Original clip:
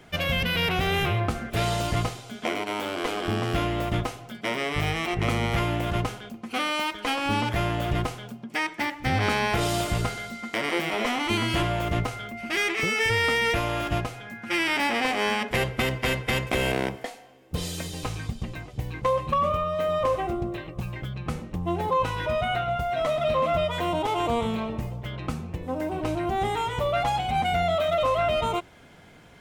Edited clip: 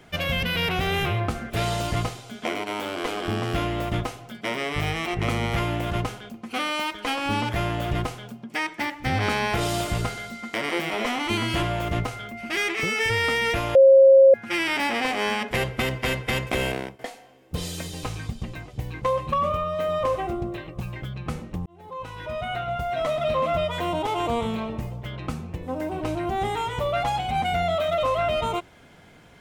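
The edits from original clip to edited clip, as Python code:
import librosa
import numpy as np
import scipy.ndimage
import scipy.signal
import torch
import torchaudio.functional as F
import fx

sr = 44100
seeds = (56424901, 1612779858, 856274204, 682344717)

y = fx.edit(x, sr, fx.bleep(start_s=13.75, length_s=0.59, hz=539.0, db=-9.0),
    fx.fade_out_to(start_s=16.62, length_s=0.37, floor_db=-16.5),
    fx.fade_in_span(start_s=21.66, length_s=1.24), tone=tone)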